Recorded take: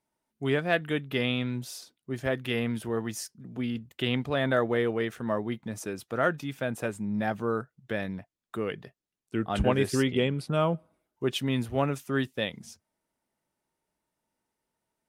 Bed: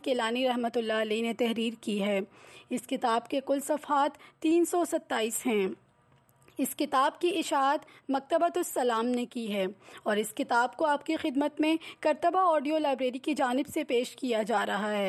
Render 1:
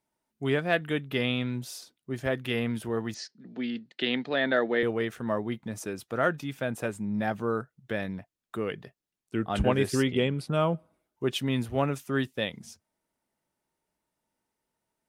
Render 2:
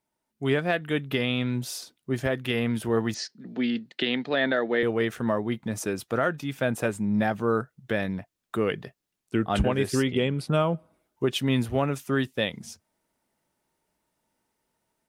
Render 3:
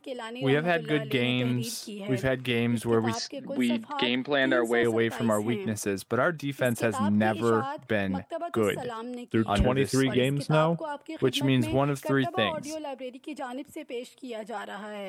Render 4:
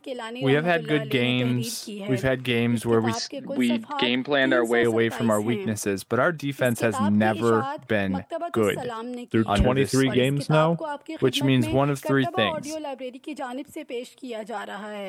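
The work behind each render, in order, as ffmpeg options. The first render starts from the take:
-filter_complex "[0:a]asettb=1/sr,asplit=3[a][b][c];[a]atrim=end=3.144[d];[b]atrim=start=3.14:end=4.83,asetpts=PTS-STARTPTS,afade=t=in:d=0.004:c=qsin,afade=t=out:st=1.686:d=0.004:c=qsin,highpass=f=190:w=0.5412,highpass=f=190:w=1.3066,equalizer=f=1.1k:t=q:w=4:g=-6,equalizer=f=1.8k:t=q:w=4:g=6,equalizer=f=4.2k:t=q:w=4:g=9,lowpass=f=5.5k:w=0.5412,lowpass=f=5.5k:w=1.3066[e];[c]atrim=start=4.826[f];[d][e]acrossfade=d=0.004:c1=hsin:c2=qsin[g];[g][f]acrossfade=d=0.004:c1=qsin:c2=hsin"
-af "dynaudnorm=f=350:g=3:m=6dB,alimiter=limit=-13dB:level=0:latency=1:release=438"
-filter_complex "[1:a]volume=-8dB[a];[0:a][a]amix=inputs=2:normalize=0"
-af "volume=3.5dB"

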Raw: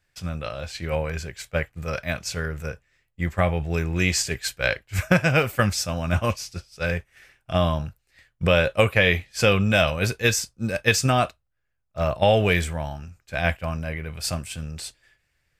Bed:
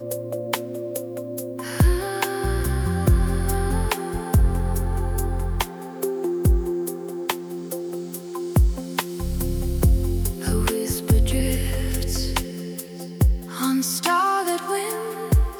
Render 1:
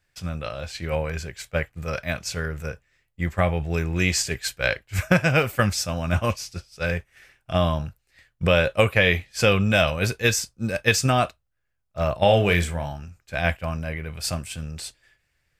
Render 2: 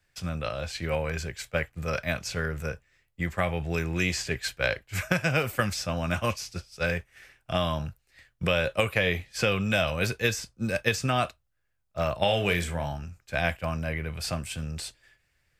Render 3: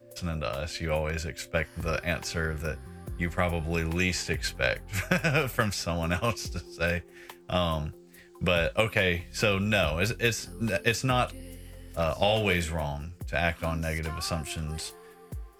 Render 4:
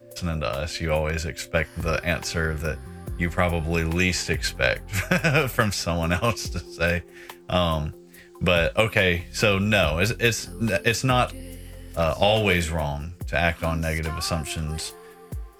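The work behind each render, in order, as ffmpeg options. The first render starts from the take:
-filter_complex "[0:a]asettb=1/sr,asplit=3[a][b][c];[a]atrim=end=12.214[d];[b]atrim=start=12.21:end=12.92,asetpts=PTS-STARTPTS,afade=t=in:d=0.004:c=qsin,afade=t=out:st=0.706:d=0.004:c=qsin,asplit=2[e][f];[f]adelay=35,volume=-9dB[g];[e][g]amix=inputs=2:normalize=0,atrim=end_sample=31311[h];[c]atrim=start=12.916[i];[d][h]acrossfade=d=0.004:c1=hsin:c2=qsin[j];[j][i]acrossfade=d=0.004:c1=qsin:c2=hsin"
-filter_complex "[0:a]acrossover=split=1300|3900[a][b][c];[a]acompressor=threshold=-24dB:ratio=4[d];[b]acompressor=threshold=-28dB:ratio=4[e];[c]acompressor=threshold=-37dB:ratio=4[f];[d][e][f]amix=inputs=3:normalize=0,acrossover=split=130|2600[g][h][i];[g]alimiter=level_in=8.5dB:limit=-24dB:level=0:latency=1,volume=-8.5dB[j];[j][h][i]amix=inputs=3:normalize=0"
-filter_complex "[1:a]volume=-21.5dB[a];[0:a][a]amix=inputs=2:normalize=0"
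-af "volume=5dB,alimiter=limit=-3dB:level=0:latency=1"

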